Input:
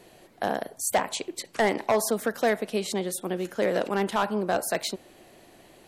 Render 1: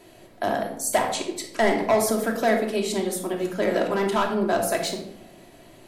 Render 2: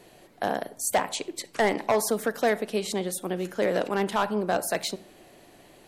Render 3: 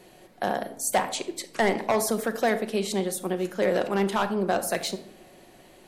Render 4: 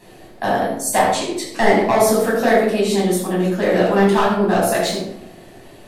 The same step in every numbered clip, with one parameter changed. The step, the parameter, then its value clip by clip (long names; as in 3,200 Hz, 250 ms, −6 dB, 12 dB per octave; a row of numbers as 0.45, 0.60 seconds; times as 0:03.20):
rectangular room, microphone at: 2.9, 0.34, 1, 9.3 metres